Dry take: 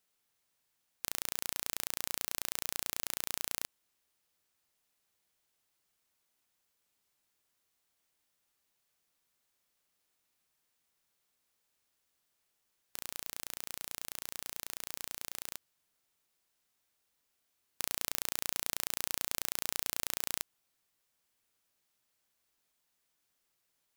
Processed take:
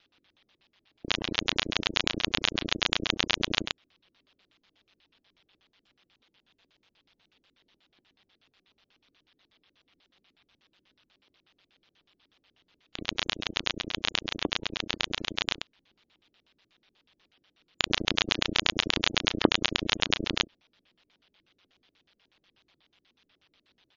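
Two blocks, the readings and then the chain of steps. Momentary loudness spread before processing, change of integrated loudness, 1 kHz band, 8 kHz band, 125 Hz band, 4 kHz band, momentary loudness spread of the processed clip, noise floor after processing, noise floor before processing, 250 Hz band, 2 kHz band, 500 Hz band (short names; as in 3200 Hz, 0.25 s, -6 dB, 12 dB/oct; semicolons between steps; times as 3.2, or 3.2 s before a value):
7 LU, +8.5 dB, +12.0 dB, -4.5 dB, +16.5 dB, +15.5 dB, 7 LU, -78 dBFS, -80 dBFS, +21.0 dB, +14.5 dB, +16.0 dB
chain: early reflections 32 ms -15 dB, 59 ms -7 dB; ring modulator 97 Hz; LFO low-pass square 8.2 Hz 310–3400 Hz; spectral gate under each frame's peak -20 dB strong; maximiser +19 dB; gain -1 dB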